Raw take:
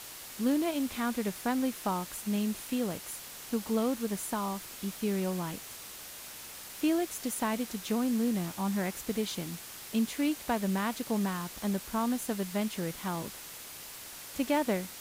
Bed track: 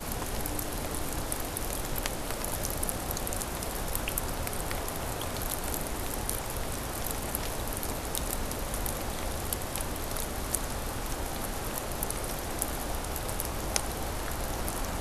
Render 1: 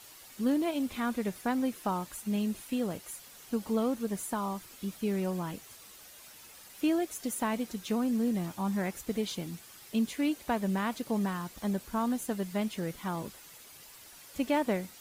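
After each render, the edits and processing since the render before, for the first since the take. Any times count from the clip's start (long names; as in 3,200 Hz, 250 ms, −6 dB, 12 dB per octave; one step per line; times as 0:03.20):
broadband denoise 9 dB, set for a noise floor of −46 dBFS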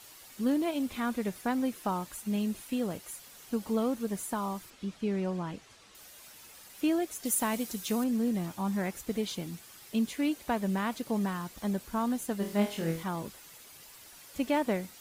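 0:04.70–0:05.95: high-frequency loss of the air 83 metres
0:07.25–0:08.04: high-shelf EQ 5,100 Hz +10.5 dB
0:12.38–0:13.03: flutter between parallel walls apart 4.2 metres, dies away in 0.4 s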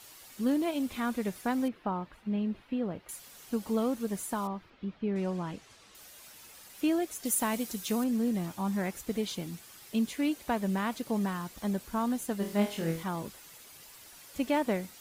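0:01.68–0:03.09: high-frequency loss of the air 370 metres
0:04.47–0:05.16: high-frequency loss of the air 320 metres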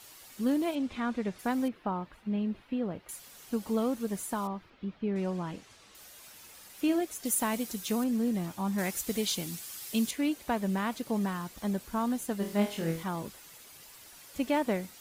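0:00.75–0:01.39: high-frequency loss of the air 98 metres
0:05.50–0:07.01: double-tracking delay 48 ms −12 dB
0:08.78–0:10.11: high-shelf EQ 3,000 Hz +11 dB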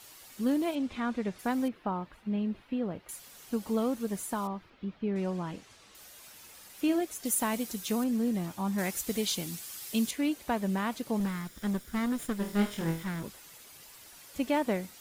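0:11.20–0:13.24: lower of the sound and its delayed copy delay 0.57 ms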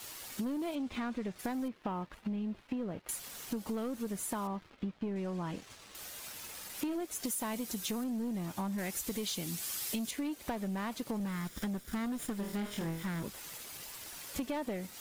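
leveller curve on the samples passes 2
downward compressor 12 to 1, threshold −34 dBFS, peak gain reduction 14 dB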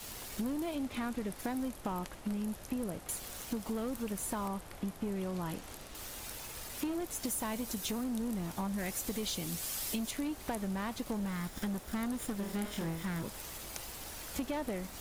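mix in bed track −16.5 dB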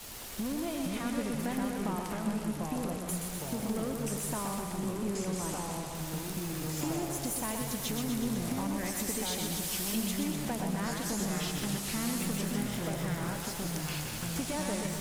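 feedback echo with a high-pass in the loop 124 ms, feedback 67%, high-pass 210 Hz, level −4.5 dB
delay with pitch and tempo change per echo 392 ms, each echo −3 semitones, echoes 2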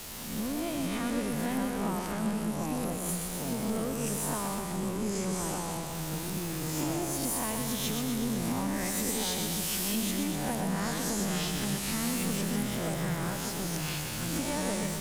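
peak hold with a rise ahead of every peak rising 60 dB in 0.79 s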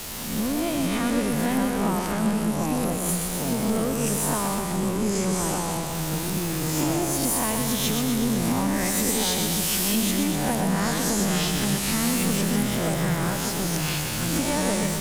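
level +7.5 dB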